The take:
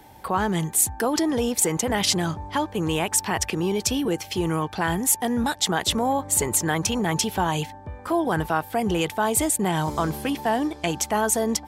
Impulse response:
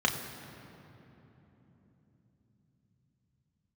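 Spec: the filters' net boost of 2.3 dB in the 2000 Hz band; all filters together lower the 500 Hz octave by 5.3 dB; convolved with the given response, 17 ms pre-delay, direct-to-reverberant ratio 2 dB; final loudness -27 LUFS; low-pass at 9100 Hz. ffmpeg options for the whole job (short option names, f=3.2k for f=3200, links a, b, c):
-filter_complex "[0:a]lowpass=9.1k,equalizer=f=500:t=o:g=-7.5,equalizer=f=2k:t=o:g=3.5,asplit=2[a][b];[1:a]atrim=start_sample=2205,adelay=17[c];[b][c]afir=irnorm=-1:irlink=0,volume=-13dB[d];[a][d]amix=inputs=2:normalize=0,volume=-4dB"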